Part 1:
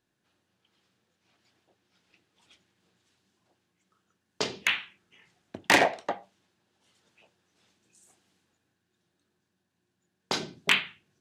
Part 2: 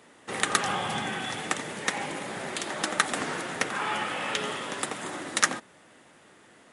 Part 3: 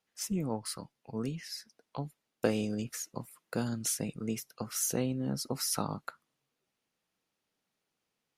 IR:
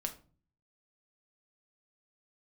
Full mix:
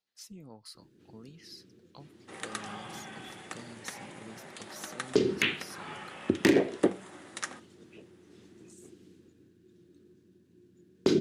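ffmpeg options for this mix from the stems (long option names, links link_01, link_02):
-filter_complex "[0:a]lowshelf=frequency=530:width_type=q:width=3:gain=12.5,alimiter=limit=-6dB:level=0:latency=1:release=415,adelay=750,volume=3dB[link_01];[1:a]adelay=2000,volume=-17dB,asplit=2[link_02][link_03];[link_03]volume=-6dB[link_04];[2:a]equalizer=frequency=4200:width=2.1:gain=11,acompressor=threshold=-39dB:ratio=2,volume=-10dB[link_05];[3:a]atrim=start_sample=2205[link_06];[link_04][link_06]afir=irnorm=-1:irlink=0[link_07];[link_01][link_02][link_05][link_07]amix=inputs=4:normalize=0,alimiter=limit=-11dB:level=0:latency=1:release=402"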